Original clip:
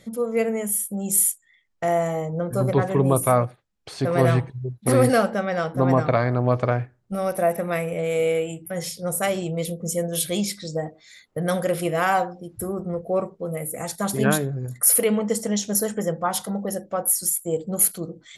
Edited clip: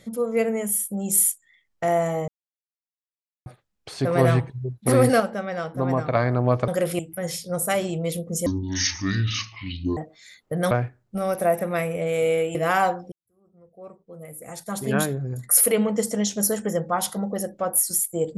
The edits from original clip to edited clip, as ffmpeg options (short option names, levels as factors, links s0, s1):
-filter_complex "[0:a]asplit=12[s0][s1][s2][s3][s4][s5][s6][s7][s8][s9][s10][s11];[s0]atrim=end=2.28,asetpts=PTS-STARTPTS,afade=t=out:st=2.276:d=0.004:c=hsin[s12];[s1]atrim=start=2.28:end=3.46,asetpts=PTS-STARTPTS,volume=0[s13];[s2]atrim=start=3.46:end=5.202,asetpts=PTS-STARTPTS,afade=t=in:d=0.004:c=hsin[s14];[s3]atrim=start=5.198:end=6.152,asetpts=PTS-STARTPTS,volume=0.596[s15];[s4]atrim=start=6.148:end=6.682[s16];[s5]atrim=start=11.558:end=11.872[s17];[s6]atrim=start=8.518:end=9.994[s18];[s7]atrim=start=9.99:end=10.82,asetpts=PTS-STARTPTS,asetrate=24255,aresample=44100[s19];[s8]atrim=start=10.816:end=11.562[s20];[s9]atrim=start=6.678:end=8.522[s21];[s10]atrim=start=11.868:end=12.44,asetpts=PTS-STARTPTS,afade=t=out:st=0.568:d=0.004:c=hsin[s22];[s11]atrim=start=12.44,asetpts=PTS-STARTPTS,afade=t=in:d=2.16:c=qua[s23];[s12][s13][s14]concat=n=3:v=0:a=1[s24];[s24][s15]acrossfade=d=0.004:c1=hsin:c2=hsin[s25];[s25][s16]acrossfade=d=0.004:c1=hsin:c2=hsin[s26];[s26][s17]acrossfade=d=0.004:c1=hsin:c2=hsin[s27];[s27][s18]acrossfade=d=0.004:c1=hsin:c2=hsin[s28];[s28][s19]acrossfade=d=0.004:c1=hsin:c2=hsin[s29];[s29][s20]acrossfade=d=0.004:c1=hsin:c2=hsin[s30];[s30][s21]acrossfade=d=0.004:c1=hsin:c2=hsin[s31];[s22][s23]concat=n=2:v=0:a=1[s32];[s31][s32]acrossfade=d=0.004:c1=hsin:c2=hsin"